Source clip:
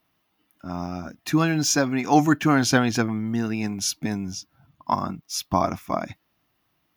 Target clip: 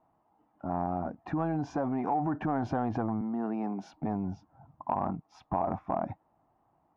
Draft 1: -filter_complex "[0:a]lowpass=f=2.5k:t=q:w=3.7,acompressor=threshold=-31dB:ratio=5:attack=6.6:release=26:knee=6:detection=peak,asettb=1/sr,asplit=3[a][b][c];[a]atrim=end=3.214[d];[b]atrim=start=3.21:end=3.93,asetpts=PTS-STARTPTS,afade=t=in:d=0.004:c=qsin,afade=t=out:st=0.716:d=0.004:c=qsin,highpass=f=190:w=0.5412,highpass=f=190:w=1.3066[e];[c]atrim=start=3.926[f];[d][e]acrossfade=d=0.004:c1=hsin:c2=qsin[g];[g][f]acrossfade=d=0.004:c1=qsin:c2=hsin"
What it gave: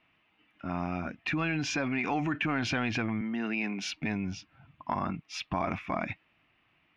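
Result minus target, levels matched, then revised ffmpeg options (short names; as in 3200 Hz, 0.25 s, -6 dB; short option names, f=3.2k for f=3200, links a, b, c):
2000 Hz band +14.0 dB
-filter_complex "[0:a]lowpass=f=830:t=q:w=3.7,acompressor=threshold=-31dB:ratio=5:attack=6.6:release=26:knee=6:detection=peak,asettb=1/sr,asplit=3[a][b][c];[a]atrim=end=3.214[d];[b]atrim=start=3.21:end=3.93,asetpts=PTS-STARTPTS,afade=t=in:d=0.004:c=qsin,afade=t=out:st=0.716:d=0.004:c=qsin,highpass=f=190:w=0.5412,highpass=f=190:w=1.3066[e];[c]atrim=start=3.926[f];[d][e]acrossfade=d=0.004:c1=hsin:c2=qsin[g];[g][f]acrossfade=d=0.004:c1=qsin:c2=hsin"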